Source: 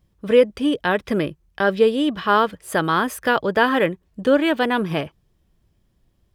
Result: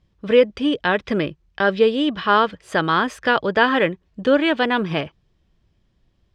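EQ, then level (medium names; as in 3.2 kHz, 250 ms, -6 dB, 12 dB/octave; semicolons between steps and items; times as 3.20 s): distance through air 150 m; treble shelf 2.3 kHz +9 dB; 0.0 dB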